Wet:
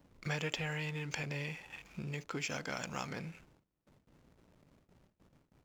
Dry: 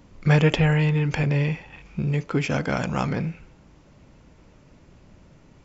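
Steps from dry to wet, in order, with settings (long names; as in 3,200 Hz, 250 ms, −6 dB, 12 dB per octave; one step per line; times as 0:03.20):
spectral tilt +2.5 dB per octave
downward compressor 2 to 1, threshold −36 dBFS, peak gain reduction 11 dB
high-shelf EQ 5,300 Hz +8 dB
slack as between gear wheels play −46 dBFS
noise gate with hold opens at −50 dBFS
level −6 dB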